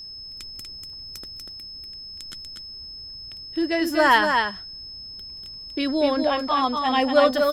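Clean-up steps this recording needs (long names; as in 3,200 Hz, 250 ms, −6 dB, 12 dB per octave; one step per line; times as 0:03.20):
notch filter 5,200 Hz, Q 30
echo removal 241 ms −4.5 dB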